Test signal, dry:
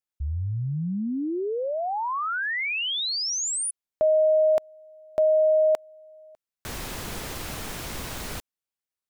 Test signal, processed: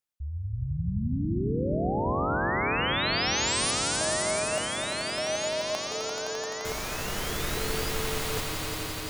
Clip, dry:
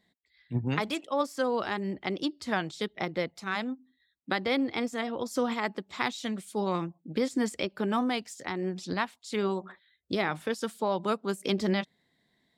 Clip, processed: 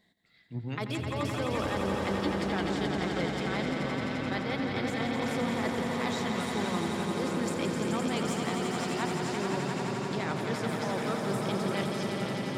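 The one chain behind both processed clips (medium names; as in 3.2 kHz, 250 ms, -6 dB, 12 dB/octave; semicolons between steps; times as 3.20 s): reverse; compression, threshold -35 dBFS; reverse; echo with a slow build-up 86 ms, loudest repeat 5, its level -6 dB; ever faster or slower copies 242 ms, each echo -6 st, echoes 2, each echo -6 dB; trim +2.5 dB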